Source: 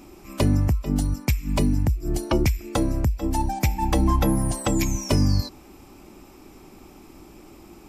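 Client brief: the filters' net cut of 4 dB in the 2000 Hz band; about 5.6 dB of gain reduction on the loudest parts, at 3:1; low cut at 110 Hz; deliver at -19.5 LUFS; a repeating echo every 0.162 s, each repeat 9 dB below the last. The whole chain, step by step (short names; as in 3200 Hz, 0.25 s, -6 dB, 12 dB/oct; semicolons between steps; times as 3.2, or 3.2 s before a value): HPF 110 Hz; bell 2000 Hz -5 dB; compressor 3:1, threshold -26 dBFS; feedback echo 0.162 s, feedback 35%, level -9 dB; gain +10 dB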